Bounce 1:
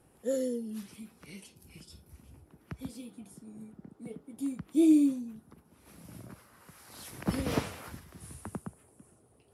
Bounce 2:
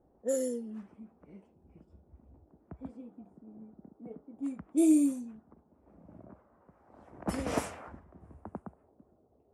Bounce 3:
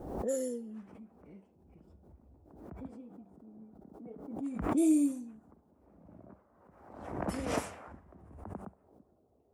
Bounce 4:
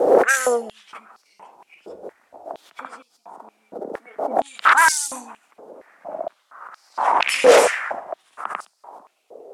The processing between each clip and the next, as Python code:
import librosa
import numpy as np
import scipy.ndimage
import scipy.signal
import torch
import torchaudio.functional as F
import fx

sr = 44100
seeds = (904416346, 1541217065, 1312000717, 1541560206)

y1 = fx.peak_eq(x, sr, hz=630.0, db=7.5, octaves=0.97)
y1 = fx.env_lowpass(y1, sr, base_hz=590.0, full_db=-23.0)
y1 = fx.graphic_eq(y1, sr, hz=(125, 500, 4000, 8000), db=(-10, -5, -9, 10))
y2 = fx.comb_fb(y1, sr, f0_hz=97.0, decay_s=0.67, harmonics='all', damping=0.0, mix_pct=30)
y2 = fx.pre_swell(y2, sr, db_per_s=55.0)
y3 = fx.fold_sine(y2, sr, drive_db=14, ceiling_db=-17.5)
y3 = scipy.signal.sosfilt(scipy.signal.butter(2, 11000.0, 'lowpass', fs=sr, output='sos'), y3)
y3 = fx.filter_held_highpass(y3, sr, hz=4.3, low_hz=490.0, high_hz=4800.0)
y3 = y3 * librosa.db_to_amplitude(5.5)